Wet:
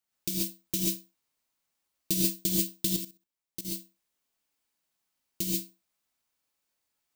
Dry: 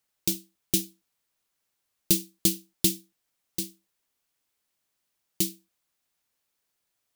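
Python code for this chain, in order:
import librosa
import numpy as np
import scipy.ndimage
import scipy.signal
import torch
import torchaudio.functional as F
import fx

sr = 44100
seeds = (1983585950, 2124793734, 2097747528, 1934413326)

y = (np.kron(scipy.signal.resample_poly(x, 1, 2), np.eye(2)[0]) * 2)[:len(x)]
y = fx.rev_gated(y, sr, seeds[0], gate_ms=160, shape='rising', drr_db=-4.5)
y = fx.level_steps(y, sr, step_db=14, at=(2.96, 3.65))
y = F.gain(torch.from_numpy(y), -7.5).numpy()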